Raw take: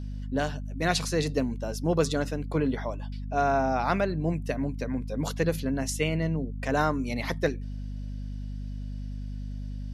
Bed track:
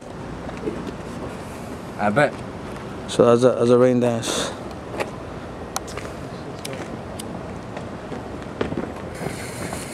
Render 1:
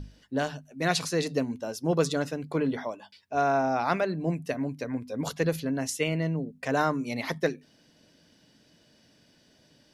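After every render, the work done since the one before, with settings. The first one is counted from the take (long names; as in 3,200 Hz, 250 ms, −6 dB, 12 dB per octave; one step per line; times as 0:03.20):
mains-hum notches 50/100/150/200/250 Hz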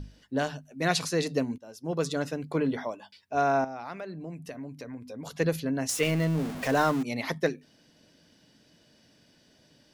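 0:01.58–0:02.33: fade in, from −18 dB
0:03.64–0:05.35: downward compressor 2.5 to 1, threshold −40 dBFS
0:05.89–0:07.03: converter with a step at zero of −32 dBFS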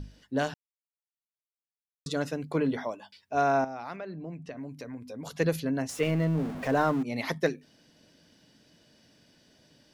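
0:00.54–0:02.06: silence
0:03.96–0:04.57: high-frequency loss of the air 120 metres
0:05.82–0:07.14: high-shelf EQ 2,500 Hz −10.5 dB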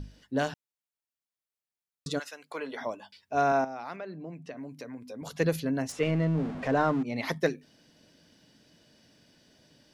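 0:02.18–0:02.80: high-pass filter 1,500 Hz → 480 Hz
0:03.52–0:05.22: Bessel high-pass filter 170 Hz
0:05.92–0:07.23: high-frequency loss of the air 67 metres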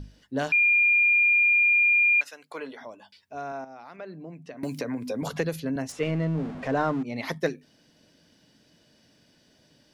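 0:00.52–0:02.21: beep over 2,410 Hz −17 dBFS
0:02.72–0:03.99: downward compressor 1.5 to 1, threshold −50 dBFS
0:04.63–0:05.76: multiband upward and downward compressor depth 100%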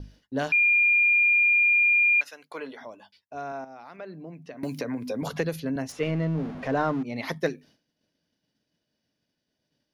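downward expander −49 dBFS
parametric band 7,900 Hz −9 dB 0.23 octaves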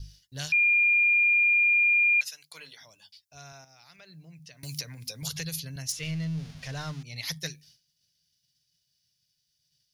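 drawn EQ curve 150 Hz 0 dB, 240 Hz −22 dB, 1,100 Hz −15 dB, 5,000 Hz +11 dB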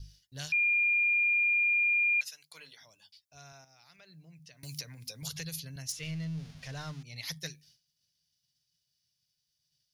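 level −5 dB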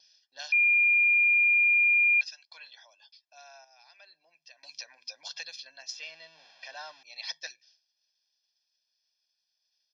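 Chebyshev band-pass filter 400–5,400 Hz, order 4
comb filter 1.2 ms, depth 96%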